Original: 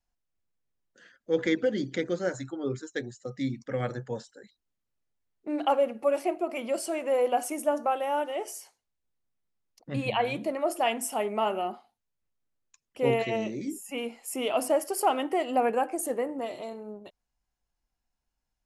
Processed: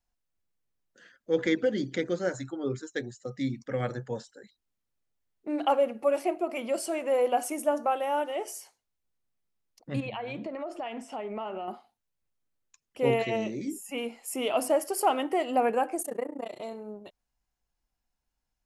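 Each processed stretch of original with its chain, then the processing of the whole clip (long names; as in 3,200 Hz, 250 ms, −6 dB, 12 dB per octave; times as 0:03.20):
0:10.00–0:11.68: downward compressor 10 to 1, threshold −31 dBFS + high-frequency loss of the air 140 metres
0:16.02–0:16.60: amplitude modulation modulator 29 Hz, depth 95% + notch filter 3,000 Hz, Q 27 + one half of a high-frequency compander encoder only
whole clip: no processing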